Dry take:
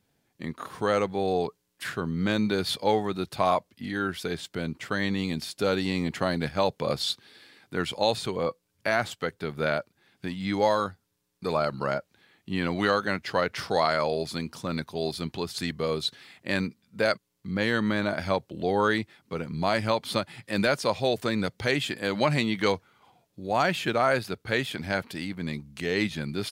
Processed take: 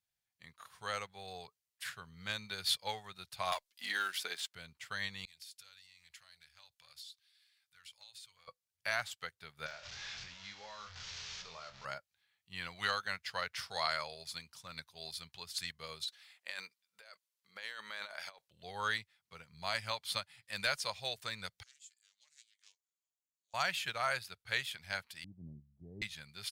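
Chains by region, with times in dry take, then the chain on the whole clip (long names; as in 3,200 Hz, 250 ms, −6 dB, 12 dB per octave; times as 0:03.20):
0:03.52–0:04.54: Chebyshev high-pass filter 270 Hz, order 3 + leveller curve on the samples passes 1 + multiband upward and downward compressor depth 100%
0:05.25–0:08.48: guitar amp tone stack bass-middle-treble 10-0-10 + downward compressor 16 to 1, threshold −38 dBFS + saturating transformer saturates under 1,600 Hz
0:09.66–0:11.85: linear delta modulator 32 kbit/s, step −30.5 dBFS + downward compressor 3 to 1, threshold −30 dBFS + flutter between parallel walls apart 4.1 metres, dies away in 0.23 s
0:16.04–0:18.48: Chebyshev high-pass filter 480 Hz + compressor whose output falls as the input rises −33 dBFS
0:21.63–0:23.54: resonant band-pass 7,100 Hz, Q 6.5 + highs frequency-modulated by the lows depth 0.16 ms
0:25.24–0:26.02: Butterworth low-pass 660 Hz + low shelf with overshoot 390 Hz +6.5 dB, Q 3
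whole clip: guitar amp tone stack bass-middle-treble 10-0-10; expander for the loud parts 1.5 to 1, over −55 dBFS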